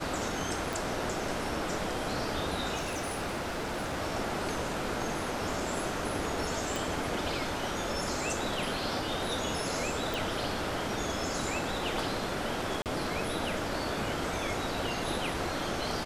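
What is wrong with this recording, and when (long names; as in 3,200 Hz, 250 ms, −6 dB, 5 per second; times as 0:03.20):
0:00.73: click
0:02.76–0:03.98: clipping −30 dBFS
0:06.76: click
0:10.14: click
0:12.82–0:12.86: drop-out 38 ms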